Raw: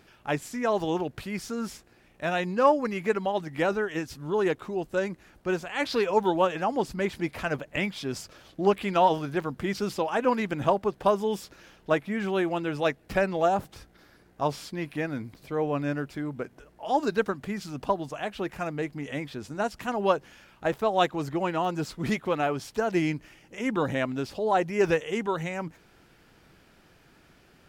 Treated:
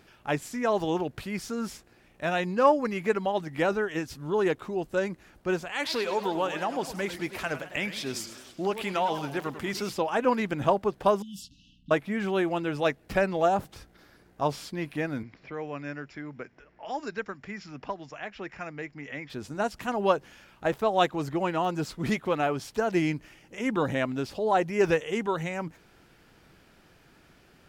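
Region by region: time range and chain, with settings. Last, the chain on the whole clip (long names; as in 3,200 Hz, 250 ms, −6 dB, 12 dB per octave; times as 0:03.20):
0:05.72–0:09.90: spectral tilt +1.5 dB per octave + downward compressor 2 to 1, threshold −26 dBFS + feedback echo with a swinging delay time 102 ms, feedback 57%, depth 204 cents, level −12 dB
0:11.22–0:11.91: low-pass that shuts in the quiet parts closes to 2,600 Hz, open at −25 dBFS + downward compressor 12 to 1, threshold −31 dBFS + linear-phase brick-wall band-stop 300–2,600 Hz
0:15.23–0:19.30: Chebyshev low-pass with heavy ripple 7,300 Hz, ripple 9 dB + low-pass that shuts in the quiet parts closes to 2,800 Hz, open at −32 dBFS + multiband upward and downward compressor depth 40%
whole clip: no processing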